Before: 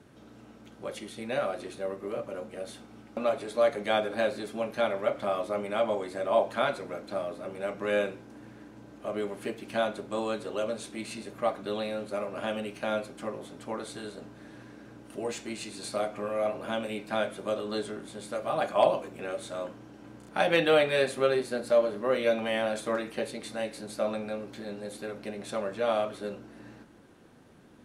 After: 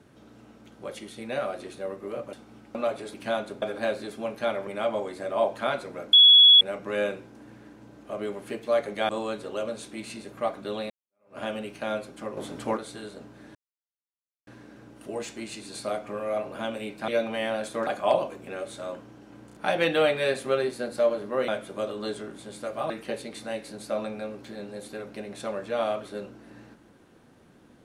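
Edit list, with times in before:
2.33–2.75 cut
3.56–3.98 swap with 9.62–10.1
5.03–5.62 cut
7.08–7.56 bleep 3370 Hz -10.5 dBFS
11.91–12.4 fade in exponential
13.38–13.78 gain +7.5 dB
14.56 insert silence 0.92 s
17.17–18.59 swap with 22.2–22.99

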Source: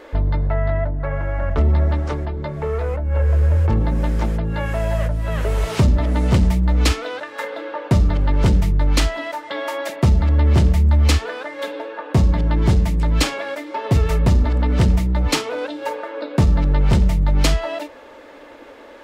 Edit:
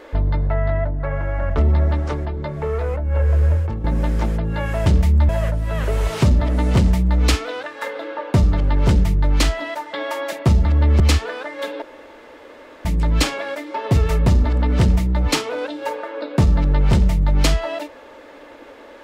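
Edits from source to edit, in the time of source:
3.51–3.84 fade out quadratic, to -10 dB
10.57–11 move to 4.86
11.82–12.85 room tone

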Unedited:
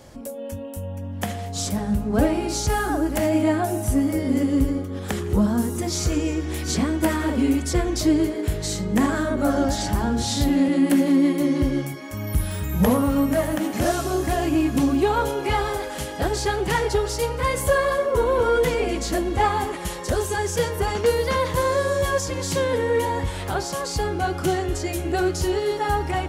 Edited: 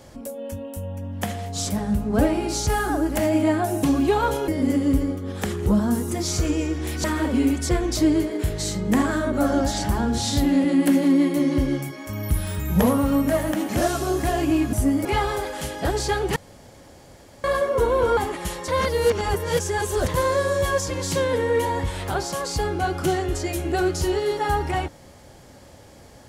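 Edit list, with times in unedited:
3.83–4.15 swap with 14.77–15.42
6.71–7.08 cut
16.73–17.81 room tone
18.54–19.57 cut
20.08–21.48 reverse

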